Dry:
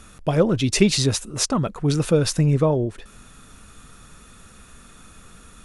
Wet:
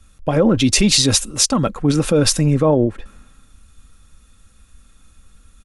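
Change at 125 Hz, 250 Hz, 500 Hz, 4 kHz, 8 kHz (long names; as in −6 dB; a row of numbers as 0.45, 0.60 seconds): +1.5, +5.0, +3.0, +8.0, +8.5 decibels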